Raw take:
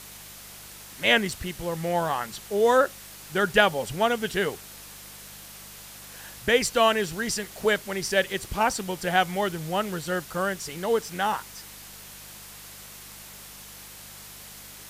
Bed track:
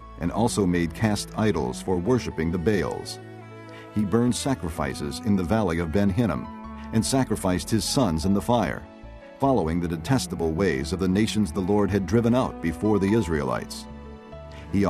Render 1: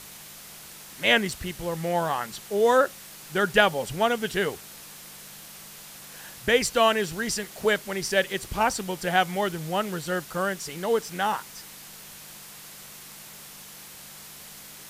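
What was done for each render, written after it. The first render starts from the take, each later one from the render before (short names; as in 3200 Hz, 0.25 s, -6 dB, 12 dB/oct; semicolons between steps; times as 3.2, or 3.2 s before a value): de-hum 50 Hz, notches 2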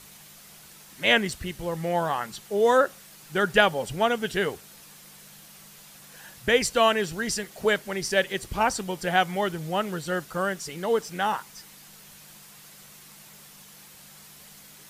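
denoiser 6 dB, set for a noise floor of -45 dBFS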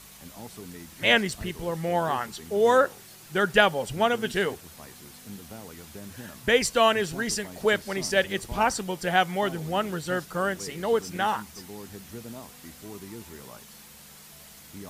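add bed track -20.5 dB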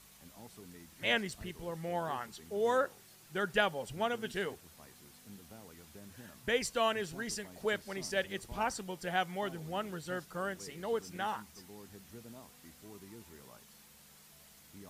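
gain -10.5 dB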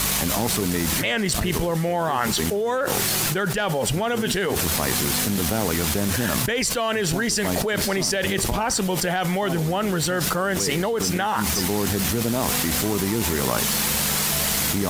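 sample leveller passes 1; fast leveller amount 100%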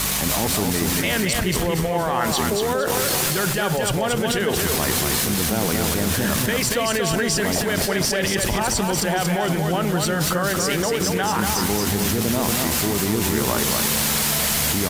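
feedback echo 0.232 s, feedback 36%, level -4 dB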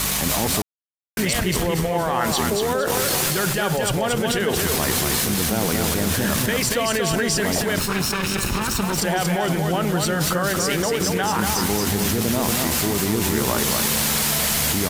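0.62–1.17 mute; 7.79–8.98 minimum comb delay 0.75 ms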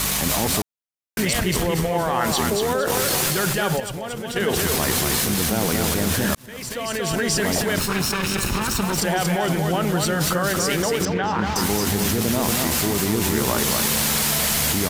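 3.8–4.36 gain -8.5 dB; 6.35–7.34 fade in; 11.05–11.56 air absorption 200 m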